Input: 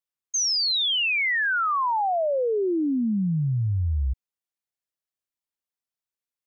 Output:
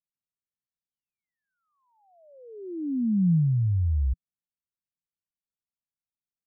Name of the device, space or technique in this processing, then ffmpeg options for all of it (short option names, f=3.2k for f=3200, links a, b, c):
the neighbour's flat through the wall: -af "lowpass=f=250:w=0.5412,lowpass=f=250:w=1.3066,equalizer=f=170:t=o:w=0.42:g=4"